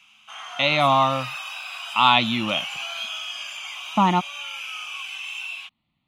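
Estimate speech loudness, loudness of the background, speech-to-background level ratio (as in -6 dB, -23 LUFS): -20.5 LUFS, -31.0 LUFS, 10.5 dB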